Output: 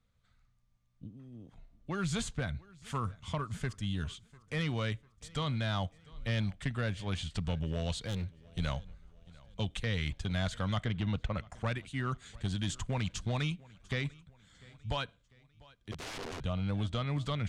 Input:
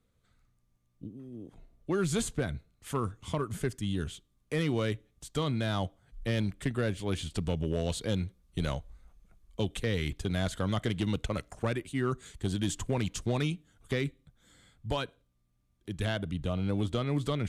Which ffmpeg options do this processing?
ffmpeg -i in.wav -filter_complex "[0:a]equalizer=frequency=360:width=1.3:gain=-12,asplit=2[link_01][link_02];[link_02]aecho=0:1:697|1394|2091:0.0668|0.0294|0.0129[link_03];[link_01][link_03]amix=inputs=2:normalize=0,asplit=3[link_04][link_05][link_06];[link_04]afade=type=out:start_time=15.91:duration=0.02[link_07];[link_05]aeval=exprs='(mod(63.1*val(0)+1,2)-1)/63.1':channel_layout=same,afade=type=in:start_time=15.91:duration=0.02,afade=type=out:start_time=16.39:duration=0.02[link_08];[link_06]afade=type=in:start_time=16.39:duration=0.02[link_09];[link_07][link_08][link_09]amix=inputs=3:normalize=0,lowpass=6300,asettb=1/sr,asplit=3[link_10][link_11][link_12];[link_10]atrim=end=7.994[link_13];[link_11]atrim=start=7.99:end=8.59,asetpts=PTS-STARTPTS,afade=type=in:duration=0.004:curve=qsin,afade=type=out:start_time=0.596:duration=0.004:curve=qsin,volume=31.5dB,asoftclip=hard,volume=-31.5dB[link_14];[link_12]atrim=start=8.586[link_15];[link_13][link_14]acrossfade=duration=0.004:curve1=hsin:curve2=qsin[link_16];[link_16][link_15]acrossfade=duration=0.004:curve1=qsin:curve2=hsin,asettb=1/sr,asplit=3[link_17][link_18][link_19];[link_17]atrim=end=10.844[link_20];[link_18]atrim=start=10.84:end=11.52,asetpts=PTS-STARTPTS,afade=type=in:duration=0.004:curve=qsin,afade=type=out:start_time=0.676:duration=0.004:curve=qsin,aemphasis=mode=reproduction:type=75fm[link_21];[link_19]atrim=start=11.516[link_22];[link_20][link_21]acrossfade=duration=0.004:curve1=hsin:curve2=qsin[link_23];[link_23][link_22]acrossfade=duration=0.004:curve1=qsin:curve2=hsin" out.wav

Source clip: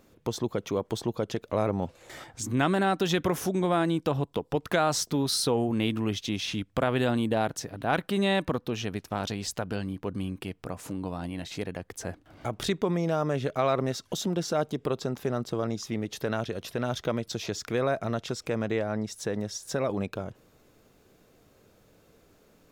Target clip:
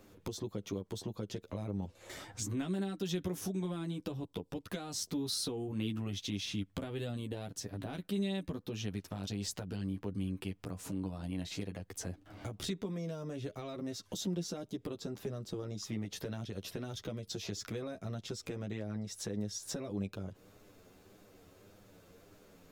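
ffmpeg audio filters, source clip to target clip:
ffmpeg -i in.wav -filter_complex "[0:a]acompressor=threshold=-40dB:ratio=2,flanger=delay=9.6:depth=1.7:regen=3:speed=1.7:shape=triangular,acrossover=split=400|3000[link_01][link_02][link_03];[link_02]acompressor=threshold=-53dB:ratio=5[link_04];[link_01][link_04][link_03]amix=inputs=3:normalize=0,volume=3.5dB" out.wav

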